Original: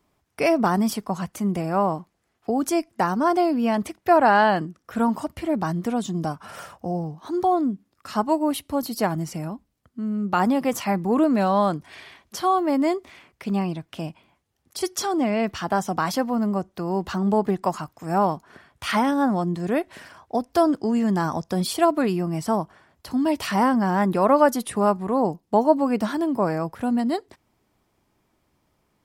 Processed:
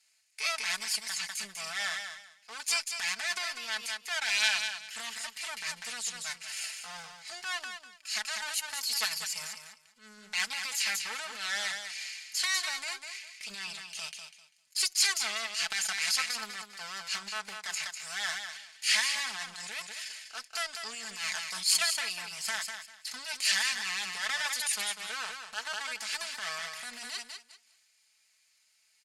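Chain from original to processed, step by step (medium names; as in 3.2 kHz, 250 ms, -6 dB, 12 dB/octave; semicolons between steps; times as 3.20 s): comb filter that takes the minimum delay 0.43 ms; compression, threshold -23 dBFS, peak gain reduction 8.5 dB; frequency weighting ITU-R 468; transient shaper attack 0 dB, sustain -7 dB; amplifier tone stack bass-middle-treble 10-0-10; feedback delay 197 ms, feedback 17%, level -9 dB; transient shaper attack -9 dB, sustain +5 dB; comb 4.6 ms, depth 60%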